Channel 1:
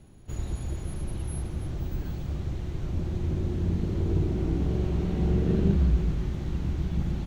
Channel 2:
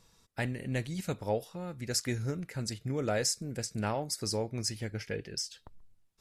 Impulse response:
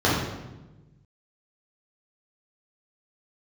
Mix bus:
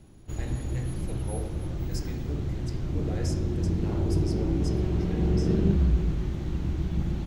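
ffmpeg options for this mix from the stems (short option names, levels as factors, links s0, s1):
-filter_complex "[0:a]volume=1[s0];[1:a]volume=0.224,asplit=2[s1][s2];[s2]volume=0.133[s3];[2:a]atrim=start_sample=2205[s4];[s3][s4]afir=irnorm=-1:irlink=0[s5];[s0][s1][s5]amix=inputs=3:normalize=0,equalizer=f=320:w=5.8:g=4"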